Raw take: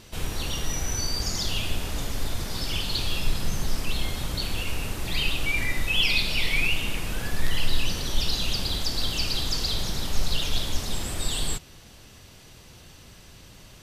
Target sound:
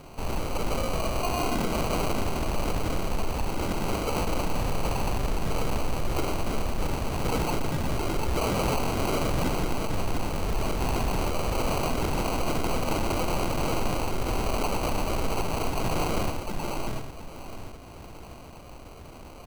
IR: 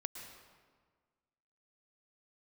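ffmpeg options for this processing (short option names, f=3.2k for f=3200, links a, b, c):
-filter_complex "[0:a]aphaser=in_gain=1:out_gain=1:delay=2.1:decay=0.2:speed=1.4:type=triangular,highshelf=f=5.3k:g=10.5,asetrate=31311,aresample=44100,equalizer=f=690:t=o:w=0.91:g=-14,asplit=2[a][b];[b]adelay=14,volume=-12dB[c];[a][c]amix=inputs=2:normalize=0,asplit=2[d][e];[e]aecho=0:1:697|1394|2091|2788:0.398|0.119|0.0358|0.0107[f];[d][f]amix=inputs=2:normalize=0,aeval=exprs='0.0891*(abs(mod(val(0)/0.0891+3,4)-2)-1)':c=same,asplit=2[g][h];[h]aecho=0:1:119:0.335[i];[g][i]amix=inputs=2:normalize=0,acrusher=samples=25:mix=1:aa=0.000001"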